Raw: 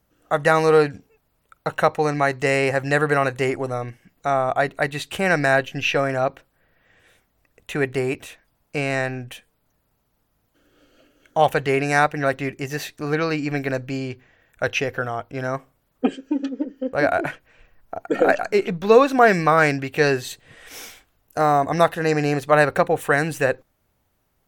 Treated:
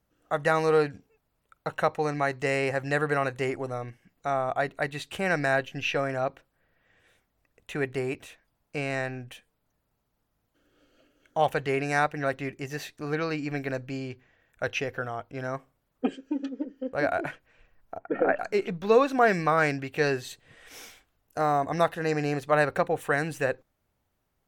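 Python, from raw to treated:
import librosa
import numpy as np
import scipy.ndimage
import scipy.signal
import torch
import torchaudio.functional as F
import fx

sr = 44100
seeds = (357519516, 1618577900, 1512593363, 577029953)

y = fx.lowpass(x, sr, hz=2300.0, slope=24, at=(17.97, 18.38), fade=0.02)
y = fx.high_shelf(y, sr, hz=10000.0, db=-4.5)
y = y * librosa.db_to_amplitude(-7.0)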